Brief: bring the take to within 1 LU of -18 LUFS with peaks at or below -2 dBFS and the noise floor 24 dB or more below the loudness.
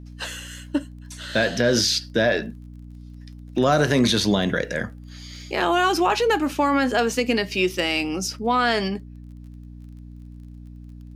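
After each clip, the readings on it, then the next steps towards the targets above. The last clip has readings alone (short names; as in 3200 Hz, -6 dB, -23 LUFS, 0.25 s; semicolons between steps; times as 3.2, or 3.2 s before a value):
ticks 24/s; hum 60 Hz; harmonics up to 300 Hz; hum level -37 dBFS; loudness -22.0 LUFS; peak -6.5 dBFS; loudness target -18.0 LUFS
-> de-click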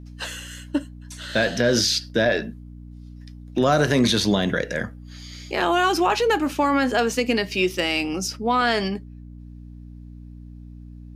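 ticks 0/s; hum 60 Hz; harmonics up to 300 Hz; hum level -37 dBFS
-> de-hum 60 Hz, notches 5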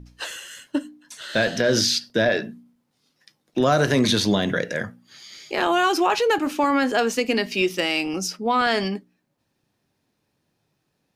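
hum none; loudness -22.0 LUFS; peak -7.0 dBFS; loudness target -18.0 LUFS
-> gain +4 dB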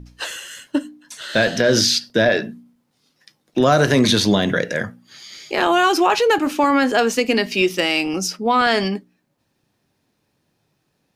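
loudness -18.0 LUFS; peak -3.0 dBFS; noise floor -70 dBFS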